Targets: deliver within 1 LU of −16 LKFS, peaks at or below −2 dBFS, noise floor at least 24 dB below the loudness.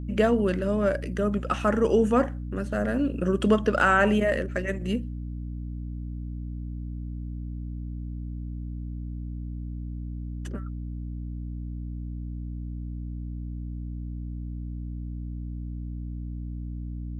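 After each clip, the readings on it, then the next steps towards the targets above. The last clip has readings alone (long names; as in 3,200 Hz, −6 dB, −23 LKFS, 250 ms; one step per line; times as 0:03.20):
mains hum 60 Hz; hum harmonics up to 300 Hz; level of the hum −31 dBFS; integrated loudness −29.5 LKFS; sample peak −8.0 dBFS; target loudness −16.0 LKFS
→ hum removal 60 Hz, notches 5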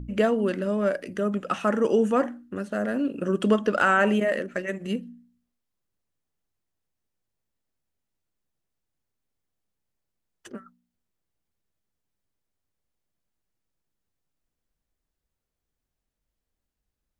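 mains hum none found; integrated loudness −25.0 LKFS; sample peak −8.5 dBFS; target loudness −16.0 LKFS
→ level +9 dB
brickwall limiter −2 dBFS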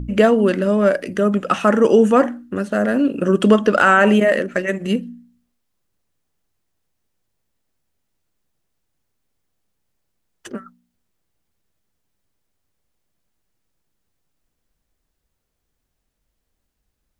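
integrated loudness −16.5 LKFS; sample peak −2.0 dBFS; background noise floor −75 dBFS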